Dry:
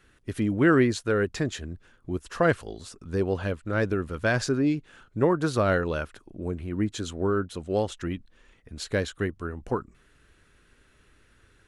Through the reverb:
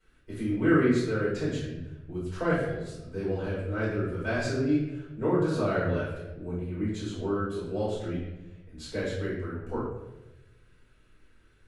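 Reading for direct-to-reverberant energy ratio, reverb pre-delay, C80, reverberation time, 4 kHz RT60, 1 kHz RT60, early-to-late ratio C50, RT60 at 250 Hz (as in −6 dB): −11.0 dB, 4 ms, 4.0 dB, 1.1 s, 0.65 s, 0.90 s, 0.5 dB, 1.3 s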